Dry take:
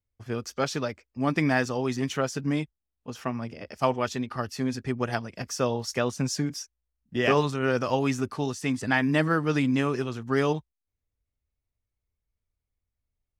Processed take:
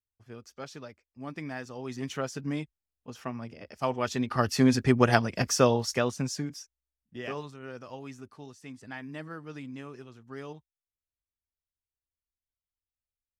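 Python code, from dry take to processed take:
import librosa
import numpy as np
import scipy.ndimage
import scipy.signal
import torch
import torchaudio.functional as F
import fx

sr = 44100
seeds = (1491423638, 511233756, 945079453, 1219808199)

y = fx.gain(x, sr, db=fx.line((1.63, -14.0), (2.1, -5.5), (3.84, -5.5), (4.51, 7.0), (5.46, 7.0), (6.31, -4.5), (7.62, -17.0)))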